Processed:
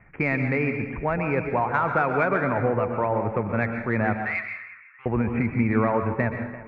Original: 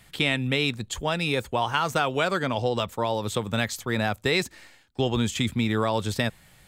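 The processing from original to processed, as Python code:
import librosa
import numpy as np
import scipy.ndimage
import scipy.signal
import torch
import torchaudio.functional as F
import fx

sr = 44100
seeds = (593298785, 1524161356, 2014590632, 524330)

p1 = scipy.signal.sosfilt(scipy.signal.butter(16, 2400.0, 'lowpass', fs=sr, output='sos'), x)
p2 = fx.echo_feedback(p1, sr, ms=341, feedback_pct=40, wet_db=-18.0)
p3 = 10.0 ** (-20.0 / 20.0) * np.tanh(p2 / 10.0 ** (-20.0 / 20.0))
p4 = p2 + F.gain(torch.from_numpy(p3), -11.5).numpy()
p5 = fx.ellip_highpass(p4, sr, hz=1100.0, order=4, stop_db=40, at=(4.22, 5.06))
y = fx.rev_plate(p5, sr, seeds[0], rt60_s=0.7, hf_ratio=0.8, predelay_ms=110, drr_db=5.5)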